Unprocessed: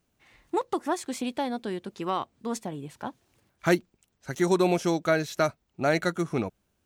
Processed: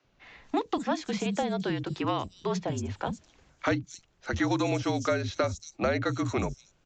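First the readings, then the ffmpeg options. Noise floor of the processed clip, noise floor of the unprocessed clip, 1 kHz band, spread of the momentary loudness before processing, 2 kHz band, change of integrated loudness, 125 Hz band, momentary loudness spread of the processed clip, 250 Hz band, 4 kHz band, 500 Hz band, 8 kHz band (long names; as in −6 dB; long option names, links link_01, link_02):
−67 dBFS, −75 dBFS, −2.0 dB, 13 LU, −2.0 dB, −2.0 dB, +2.0 dB, 8 LU, −1.0 dB, +0.5 dB, −3.0 dB, −2.0 dB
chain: -filter_complex "[0:a]acrossover=split=290|5700[link_01][link_02][link_03];[link_01]adelay=40[link_04];[link_03]adelay=230[link_05];[link_04][link_02][link_05]amix=inputs=3:normalize=0,afreqshift=-49,acrossover=split=500|2000[link_06][link_07][link_08];[link_06]acompressor=threshold=-37dB:ratio=4[link_09];[link_07]acompressor=threshold=-41dB:ratio=4[link_10];[link_08]acompressor=threshold=-47dB:ratio=4[link_11];[link_09][link_10][link_11]amix=inputs=3:normalize=0,aresample=16000,aresample=44100,volume=8dB"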